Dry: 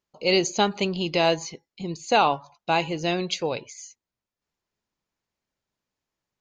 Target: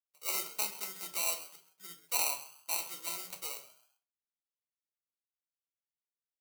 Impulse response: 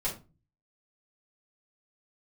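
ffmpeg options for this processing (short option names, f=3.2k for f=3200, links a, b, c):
-filter_complex "[0:a]adynamicsmooth=sensitivity=6:basefreq=510,acrusher=samples=26:mix=1:aa=0.000001,aderivative,asplit=4[a][b][c][d];[b]adelay=131,afreqshift=92,volume=-16dB[e];[c]adelay=262,afreqshift=184,volume=-25.9dB[f];[d]adelay=393,afreqshift=276,volume=-35.8dB[g];[a][e][f][g]amix=inputs=4:normalize=0,asplit=2[h][i];[1:a]atrim=start_sample=2205[j];[i][j]afir=irnorm=-1:irlink=0,volume=-5dB[k];[h][k]amix=inputs=2:normalize=0,volume=-7dB"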